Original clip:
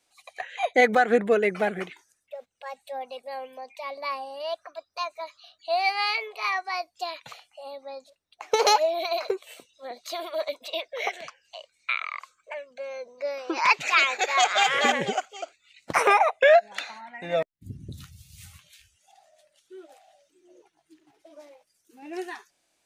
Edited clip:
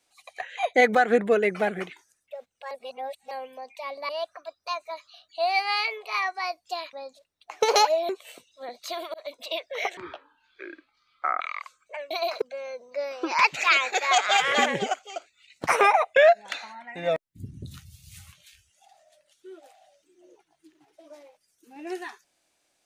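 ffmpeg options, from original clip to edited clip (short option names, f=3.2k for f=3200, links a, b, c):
-filter_complex "[0:a]asplit=11[a][b][c][d][e][f][g][h][i][j][k];[a]atrim=end=2.712[l];[b]atrim=start=2.708:end=3.312,asetpts=PTS-STARTPTS,areverse[m];[c]atrim=start=3.308:end=4.092[n];[d]atrim=start=4.388:end=7.232[o];[e]atrim=start=7.838:end=9.002[p];[f]atrim=start=9.308:end=10.36,asetpts=PTS-STARTPTS,afade=t=out:st=1.048:d=0.004:c=hsin[q];[g]atrim=start=10.36:end=11.194,asetpts=PTS-STARTPTS,afade=t=in:d=0.25[r];[h]atrim=start=11.19:end=11.98,asetpts=PTS-STARTPTS,asetrate=24255,aresample=44100[s];[i]atrim=start=11.976:end=12.682[t];[j]atrim=start=8.998:end=9.312[u];[k]atrim=start=12.678[v];[l][m]acrossfade=d=0.004:c1=hsin:c2=hsin[w];[w][n]acrossfade=d=0.004:c1=hsin:c2=hsin[x];[x][o]acrossfade=d=0.004:c1=hsin:c2=hsin[y];[y][p]acrossfade=d=0.004:c1=hsin:c2=hsin[z];[q][r]concat=n=2:v=0:a=1[aa];[z][aa]acrossfade=d=0.004:c1=hsin:c2=hsin[ab];[ab][s]acrossfade=d=0.004:c1=hsin:c2=hsin[ac];[ac][t]acrossfade=d=0.004:c1=hsin:c2=hsin[ad];[ad][u]acrossfade=d=0.004:c1=hsin:c2=hsin[ae];[ae][v]acrossfade=d=0.004:c1=hsin:c2=hsin"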